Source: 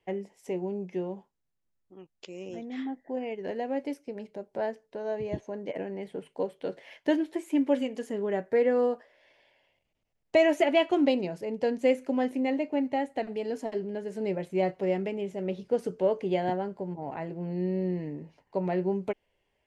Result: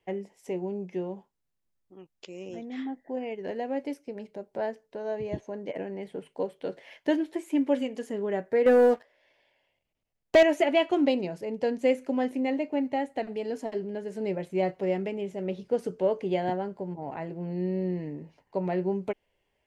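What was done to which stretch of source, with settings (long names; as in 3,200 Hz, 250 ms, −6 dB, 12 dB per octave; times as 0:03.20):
0:08.66–0:10.43: leveller curve on the samples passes 2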